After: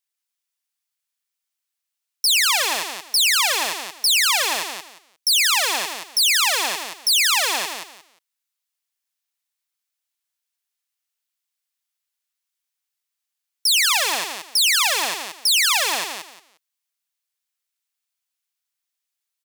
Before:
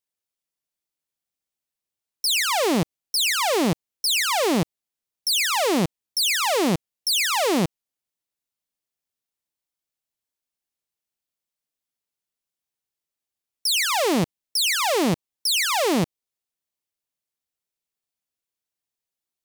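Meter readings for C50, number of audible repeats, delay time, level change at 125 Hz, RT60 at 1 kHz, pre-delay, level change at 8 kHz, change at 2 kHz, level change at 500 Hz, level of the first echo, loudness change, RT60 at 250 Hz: none, 3, 0.177 s, under -25 dB, none, none, +5.5 dB, +5.0 dB, -9.0 dB, -6.0 dB, +4.0 dB, none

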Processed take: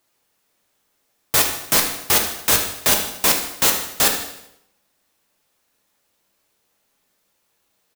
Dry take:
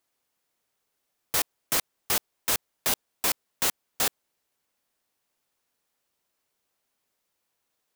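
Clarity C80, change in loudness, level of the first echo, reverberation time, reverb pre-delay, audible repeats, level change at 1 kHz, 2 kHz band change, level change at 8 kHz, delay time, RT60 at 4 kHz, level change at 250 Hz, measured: 9.5 dB, +10.0 dB, -12.0 dB, 0.80 s, 3 ms, 5, +10.0 dB, +10.5 dB, +10.0 dB, 77 ms, 0.75 s, +11.5 dB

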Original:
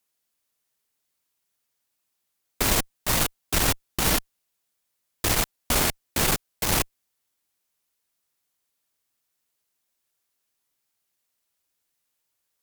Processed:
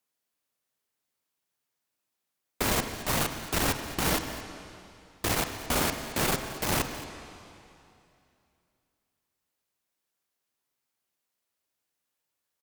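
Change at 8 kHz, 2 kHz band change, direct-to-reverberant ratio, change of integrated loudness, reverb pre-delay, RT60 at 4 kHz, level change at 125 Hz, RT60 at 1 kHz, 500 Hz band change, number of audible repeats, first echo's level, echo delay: -6.0 dB, -3.0 dB, 6.5 dB, -5.0 dB, 5 ms, 2.5 s, -3.5 dB, 2.7 s, -1.0 dB, 1, -16.5 dB, 0.221 s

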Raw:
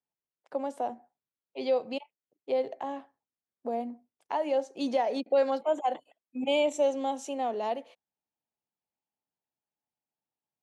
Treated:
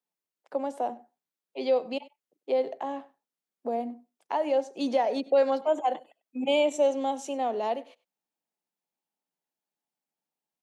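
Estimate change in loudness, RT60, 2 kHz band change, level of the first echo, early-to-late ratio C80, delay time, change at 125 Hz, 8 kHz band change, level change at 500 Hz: +2.0 dB, none, +1.5 dB, -21.0 dB, none, 97 ms, n/a, +1.5 dB, +2.5 dB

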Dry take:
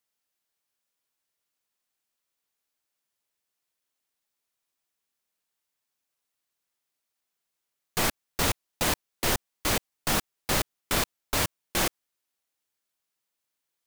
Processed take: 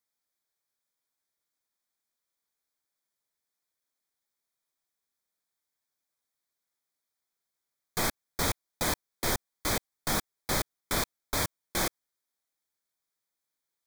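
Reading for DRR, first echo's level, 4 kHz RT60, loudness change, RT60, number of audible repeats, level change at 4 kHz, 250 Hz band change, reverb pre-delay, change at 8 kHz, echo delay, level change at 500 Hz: none, none, none, -3.5 dB, none, none, -4.0 dB, -3.0 dB, none, -3.0 dB, none, -3.0 dB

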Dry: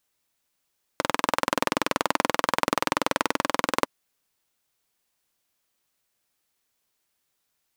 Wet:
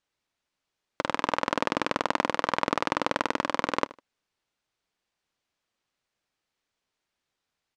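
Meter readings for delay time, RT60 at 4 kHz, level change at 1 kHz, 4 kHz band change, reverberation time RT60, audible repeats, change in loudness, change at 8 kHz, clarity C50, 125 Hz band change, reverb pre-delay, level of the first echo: 77 ms, none, -2.0 dB, -4.0 dB, none, 2, -2.5 dB, -10.0 dB, none, -1.5 dB, none, -19.5 dB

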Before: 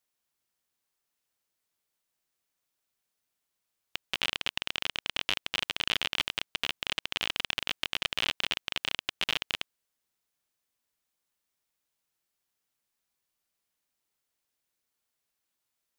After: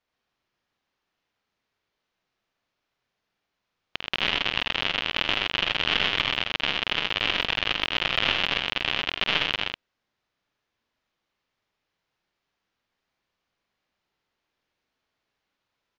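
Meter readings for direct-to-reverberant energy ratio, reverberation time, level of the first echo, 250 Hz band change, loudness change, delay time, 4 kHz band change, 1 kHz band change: none, none, -5.5 dB, +10.0 dB, +7.0 dB, 49 ms, +6.5 dB, +9.5 dB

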